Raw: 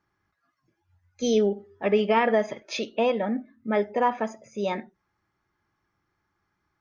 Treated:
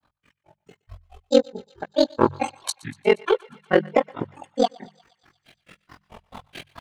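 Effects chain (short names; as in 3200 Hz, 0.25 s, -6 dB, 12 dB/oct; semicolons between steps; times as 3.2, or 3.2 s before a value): recorder AGC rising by 18 dB/s; grains 0.121 s, grains 4.6/s, spray 16 ms, pitch spread up and down by 12 st; bell 3100 Hz +4.5 dB 2.2 oct; de-hum 59.16 Hz, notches 3; in parallel at -7.5 dB: hard clip -25 dBFS, distortion -7 dB; on the sum: ring modulator 22 Hz; on a send: thinning echo 0.119 s, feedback 72%, high-pass 750 Hz, level -22.5 dB; on the sum: gain +9 dB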